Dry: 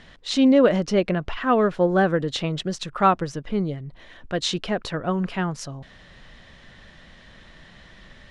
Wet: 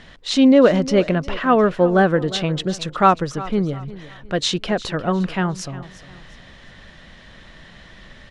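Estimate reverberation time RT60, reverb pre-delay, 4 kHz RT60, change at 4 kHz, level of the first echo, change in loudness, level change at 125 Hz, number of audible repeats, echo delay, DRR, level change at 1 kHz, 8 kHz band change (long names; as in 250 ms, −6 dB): no reverb audible, no reverb audible, no reverb audible, +4.0 dB, −17.0 dB, +4.0 dB, +4.0 dB, 2, 355 ms, no reverb audible, +4.0 dB, +4.0 dB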